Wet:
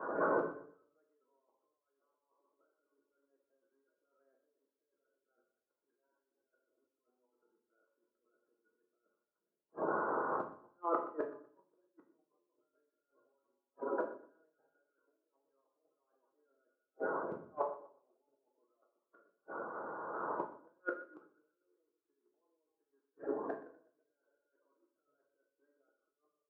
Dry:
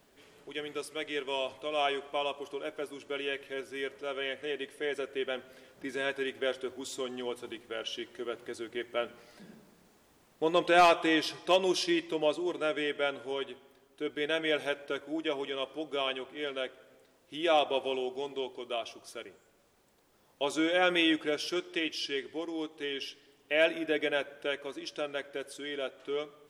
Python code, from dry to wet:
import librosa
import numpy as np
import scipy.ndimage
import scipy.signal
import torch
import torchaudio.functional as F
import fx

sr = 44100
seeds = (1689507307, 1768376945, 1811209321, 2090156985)

y = fx.spec_quant(x, sr, step_db=30)
y = scipy.signal.sosfilt(scipy.signal.cheby1(6, 3, 1500.0, 'lowpass', fs=sr, output='sos'), y)
y = fx.over_compress(y, sr, threshold_db=-45.0, ratio=-1.0)
y = fx.gate_flip(y, sr, shuts_db=-44.0, range_db=-38)
y = scipy.signal.sosfilt(scipy.signal.butter(2, 400.0, 'highpass', fs=sr, output='sos'), y)
y = fx.notch(y, sr, hz=730.0, q=12.0)
y = fx.echo_feedback(y, sr, ms=123, feedback_pct=43, wet_db=-14.5)
y = fx.room_shoebox(y, sr, seeds[0], volume_m3=83.0, walls='mixed', distance_m=0.62)
y = fx.band_widen(y, sr, depth_pct=100)
y = y * librosa.db_to_amplitude(15.0)